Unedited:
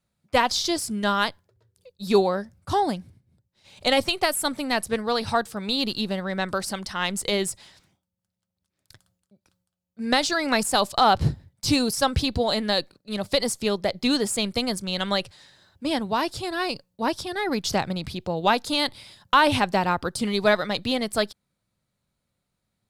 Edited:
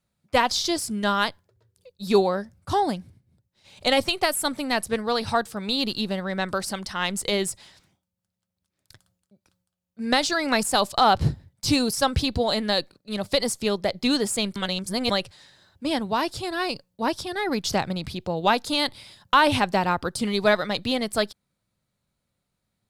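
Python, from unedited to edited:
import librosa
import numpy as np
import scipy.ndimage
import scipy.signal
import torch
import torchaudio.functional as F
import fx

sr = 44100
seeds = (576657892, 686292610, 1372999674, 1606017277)

y = fx.edit(x, sr, fx.reverse_span(start_s=14.56, length_s=0.54), tone=tone)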